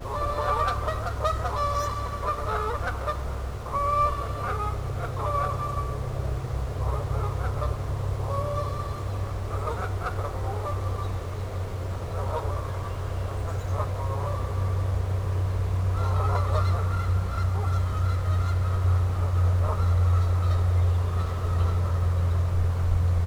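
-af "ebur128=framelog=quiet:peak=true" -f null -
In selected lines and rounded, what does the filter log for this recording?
Integrated loudness:
  I:         -27.4 LUFS
  Threshold: -37.4 LUFS
Loudness range:
  LRA:         6.5 LU
  Threshold: -47.6 LUFS
  LRA low:   -31.0 LUFS
  LRA high:  -24.5 LUFS
True peak:
  Peak:      -11.9 dBFS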